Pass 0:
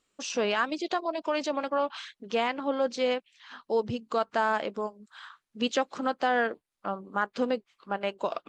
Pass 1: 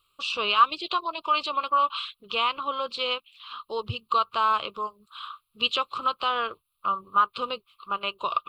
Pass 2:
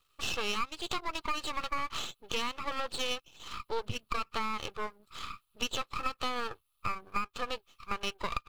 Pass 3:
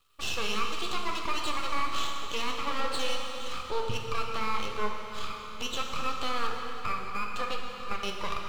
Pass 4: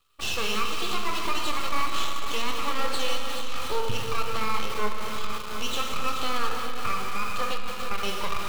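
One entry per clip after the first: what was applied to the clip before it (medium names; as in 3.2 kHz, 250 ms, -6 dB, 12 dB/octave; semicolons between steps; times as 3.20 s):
FFT filter 110 Hz 0 dB, 260 Hz -23 dB, 370 Hz -12 dB, 790 Hz -17 dB, 1.2 kHz +8 dB, 1.8 kHz -24 dB, 2.6 kHz +2 dB, 4.2 kHz +1 dB, 6.2 kHz -22 dB, 11 kHz +7 dB; trim +8 dB
comb 2.3 ms, depth 37%; compression 10:1, threshold -27 dBFS, peak gain reduction 14.5 dB; half-wave rectifier; trim +1 dB
peak limiter -22.5 dBFS, peak gain reduction 7 dB; flange 0.63 Hz, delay 8.5 ms, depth 8.9 ms, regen +70%; plate-style reverb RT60 3.9 s, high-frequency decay 0.8×, DRR 1 dB; trim +6.5 dB
shuffle delay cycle 719 ms, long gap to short 1.5:1, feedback 45%, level -12.5 dB; in parallel at -8.5 dB: bit crusher 5-bit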